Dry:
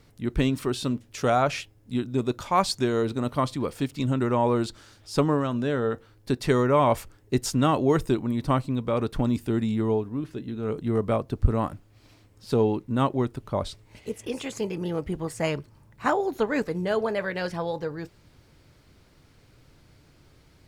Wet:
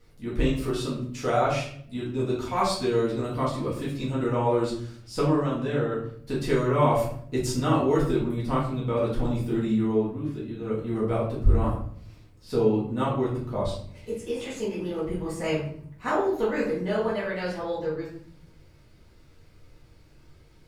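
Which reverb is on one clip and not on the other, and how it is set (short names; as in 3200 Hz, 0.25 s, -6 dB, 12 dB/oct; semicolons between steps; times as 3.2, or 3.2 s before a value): shoebox room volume 88 m³, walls mixed, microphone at 1.9 m; gain -9.5 dB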